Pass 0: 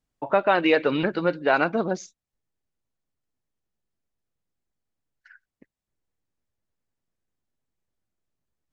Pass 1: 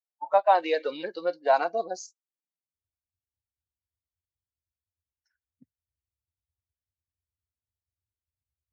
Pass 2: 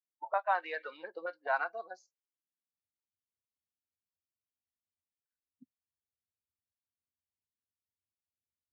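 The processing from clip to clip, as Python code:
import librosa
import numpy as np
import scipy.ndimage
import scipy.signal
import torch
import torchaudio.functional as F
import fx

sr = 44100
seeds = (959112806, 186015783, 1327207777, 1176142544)

y1 = fx.band_shelf(x, sr, hz=2000.0, db=-11.0, octaves=1.7)
y1 = fx.filter_sweep_highpass(y1, sr, from_hz=750.0, to_hz=81.0, start_s=1.99, end_s=2.86, q=1.6)
y1 = fx.noise_reduce_blind(y1, sr, reduce_db=20)
y2 = fx.auto_wah(y1, sr, base_hz=230.0, top_hz=1500.0, q=2.4, full_db=-27.0, direction='up')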